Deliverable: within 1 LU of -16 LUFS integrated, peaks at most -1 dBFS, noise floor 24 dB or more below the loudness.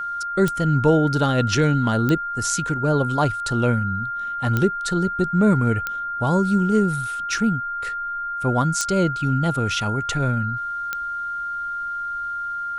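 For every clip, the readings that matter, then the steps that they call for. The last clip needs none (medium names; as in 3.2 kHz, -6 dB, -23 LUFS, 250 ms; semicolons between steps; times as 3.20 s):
clicks found 6; steady tone 1.4 kHz; tone level -25 dBFS; loudness -21.5 LUFS; peak level -5.0 dBFS; loudness target -16.0 LUFS
-> de-click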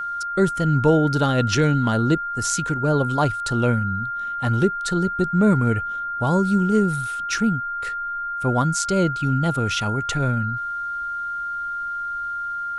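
clicks found 0; steady tone 1.4 kHz; tone level -25 dBFS
-> band-stop 1.4 kHz, Q 30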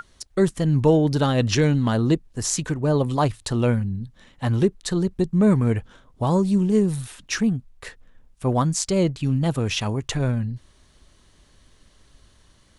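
steady tone not found; loudness -22.5 LUFS; peak level -5.5 dBFS; loudness target -16.0 LUFS
-> trim +6.5 dB; peak limiter -1 dBFS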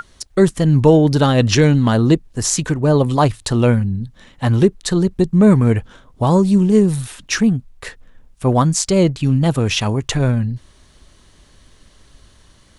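loudness -16.0 LUFS; peak level -1.0 dBFS; noise floor -51 dBFS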